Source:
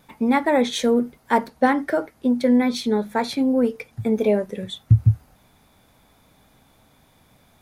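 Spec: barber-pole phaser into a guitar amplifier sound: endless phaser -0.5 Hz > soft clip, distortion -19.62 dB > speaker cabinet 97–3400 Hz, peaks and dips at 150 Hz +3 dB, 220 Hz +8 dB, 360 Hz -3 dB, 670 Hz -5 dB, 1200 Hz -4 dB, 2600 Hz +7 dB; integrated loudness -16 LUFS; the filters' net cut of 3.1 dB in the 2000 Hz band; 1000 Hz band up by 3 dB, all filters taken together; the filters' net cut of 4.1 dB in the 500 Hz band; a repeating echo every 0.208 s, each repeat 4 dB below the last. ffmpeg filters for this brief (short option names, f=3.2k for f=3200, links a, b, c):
-filter_complex "[0:a]equalizer=f=500:t=o:g=-4.5,equalizer=f=1k:t=o:g=8.5,equalizer=f=2k:t=o:g=-7,aecho=1:1:208|416|624|832|1040|1248|1456|1664|1872:0.631|0.398|0.25|0.158|0.0994|0.0626|0.0394|0.0249|0.0157,asplit=2[a][b];[b]afreqshift=-0.5[c];[a][c]amix=inputs=2:normalize=1,asoftclip=threshold=-9.5dB,highpass=97,equalizer=f=150:t=q:w=4:g=3,equalizer=f=220:t=q:w=4:g=8,equalizer=f=360:t=q:w=4:g=-3,equalizer=f=670:t=q:w=4:g=-5,equalizer=f=1.2k:t=q:w=4:g=-4,equalizer=f=2.6k:t=q:w=4:g=7,lowpass=f=3.4k:w=0.5412,lowpass=f=3.4k:w=1.3066,volume=4dB"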